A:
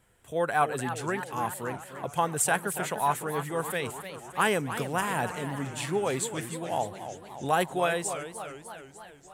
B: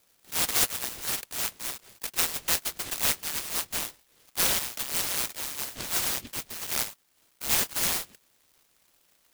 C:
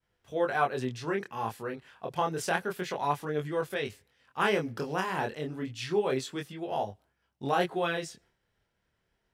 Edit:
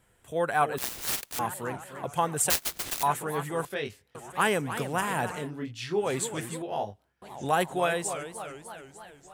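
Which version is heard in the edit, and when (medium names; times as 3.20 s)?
A
0.78–1.39 s: from B
2.50–3.03 s: from B
3.65–4.15 s: from C
5.44–6.04 s: from C, crossfade 0.16 s
6.62–7.22 s: from C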